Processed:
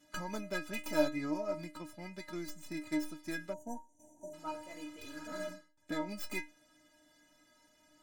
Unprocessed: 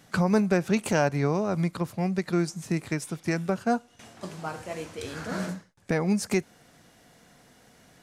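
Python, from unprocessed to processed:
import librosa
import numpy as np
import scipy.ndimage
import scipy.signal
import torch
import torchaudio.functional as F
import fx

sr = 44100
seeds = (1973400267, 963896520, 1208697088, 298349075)

y = fx.tracing_dist(x, sr, depth_ms=0.2)
y = fx.stiff_resonator(y, sr, f0_hz=300.0, decay_s=0.27, stiffness=0.008)
y = fx.spec_box(y, sr, start_s=3.53, length_s=0.81, low_hz=950.0, high_hz=5700.0, gain_db=-29)
y = y * 10.0 ** (5.0 / 20.0)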